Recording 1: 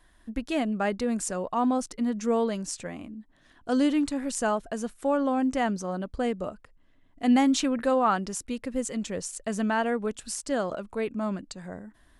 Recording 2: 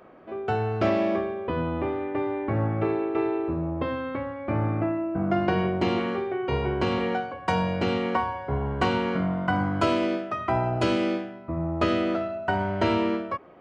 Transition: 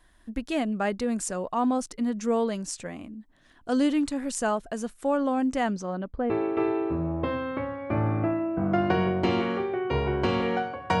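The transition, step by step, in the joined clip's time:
recording 1
0:05.69–0:06.30: low-pass filter 9,700 Hz → 1,100 Hz
0:06.30: continue with recording 2 from 0:02.88

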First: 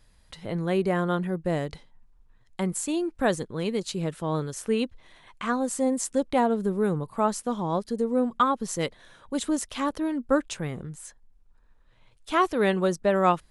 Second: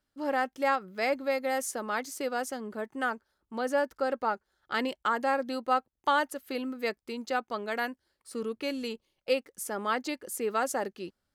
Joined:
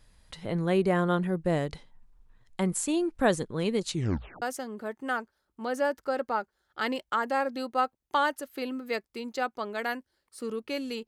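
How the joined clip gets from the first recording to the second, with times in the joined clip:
first
0:03.90: tape stop 0.52 s
0:04.42: continue with second from 0:02.35

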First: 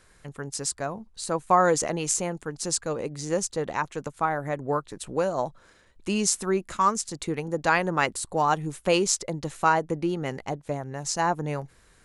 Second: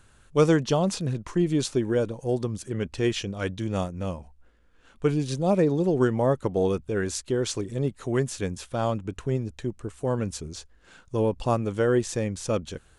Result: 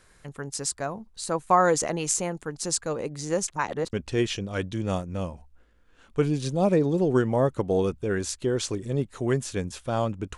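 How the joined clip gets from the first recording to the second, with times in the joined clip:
first
0:03.48–0:03.93: reverse
0:03.93: continue with second from 0:02.79

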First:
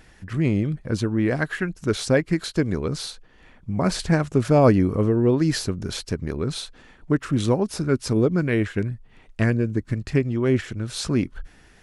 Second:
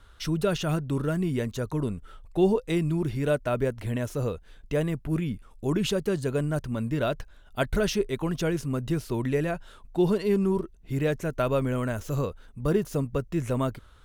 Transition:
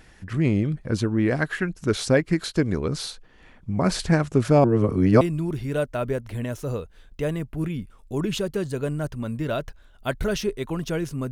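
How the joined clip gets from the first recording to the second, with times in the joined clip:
first
0:04.64–0:05.21: reverse
0:05.21: continue with second from 0:02.73

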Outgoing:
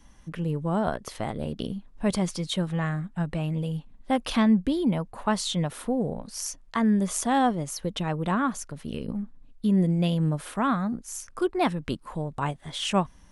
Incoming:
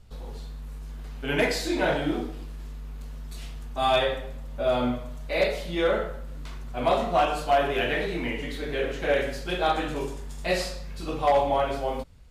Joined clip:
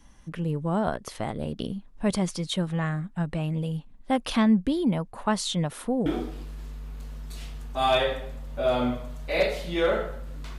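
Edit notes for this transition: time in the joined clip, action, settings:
outgoing
0:06.06: continue with incoming from 0:02.07

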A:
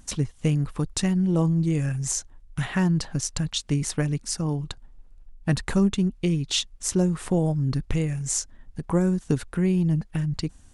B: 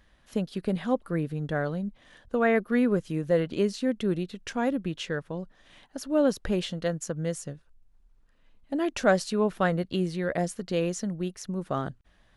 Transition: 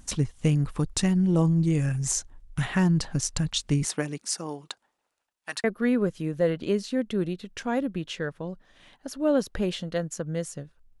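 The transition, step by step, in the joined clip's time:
A
0:03.85–0:05.64: high-pass filter 220 Hz → 1,200 Hz
0:05.64: continue with B from 0:02.54

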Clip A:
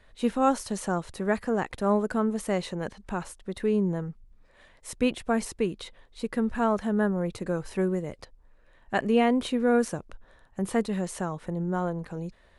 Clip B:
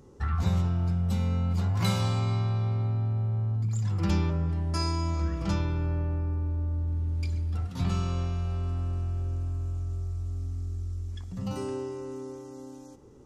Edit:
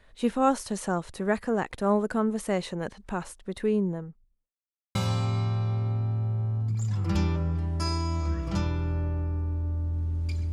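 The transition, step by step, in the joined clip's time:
clip A
0:03.61–0:04.55: fade out and dull
0:04.55–0:04.95: silence
0:04.95: continue with clip B from 0:01.89

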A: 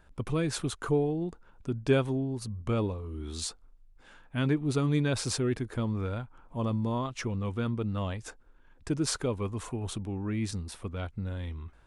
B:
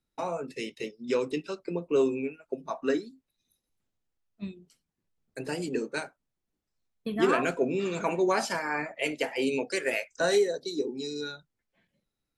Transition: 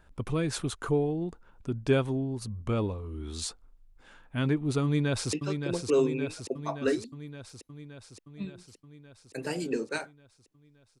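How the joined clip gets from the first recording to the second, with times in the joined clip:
A
0:04.84–0:05.33: delay throw 570 ms, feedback 70%, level −6.5 dB
0:05.33: continue with B from 0:01.35

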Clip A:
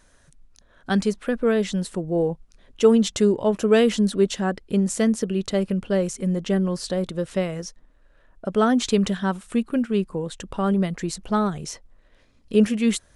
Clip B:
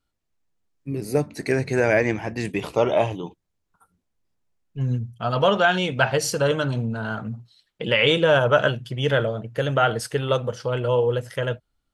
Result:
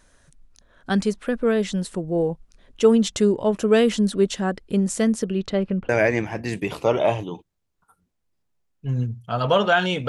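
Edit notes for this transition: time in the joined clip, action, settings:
clip A
0:05.24–0:05.89: low-pass filter 7,500 Hz → 1,800 Hz
0:05.89: continue with clip B from 0:01.81

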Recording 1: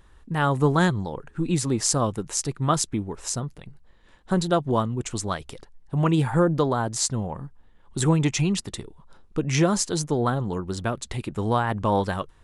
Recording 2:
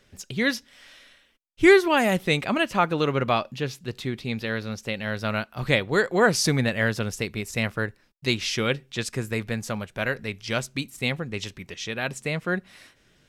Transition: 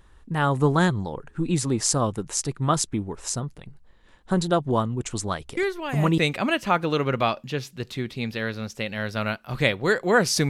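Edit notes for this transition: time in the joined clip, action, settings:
recording 1
0:05.57: mix in recording 2 from 0:01.65 0.61 s −10.5 dB
0:06.18: continue with recording 2 from 0:02.26

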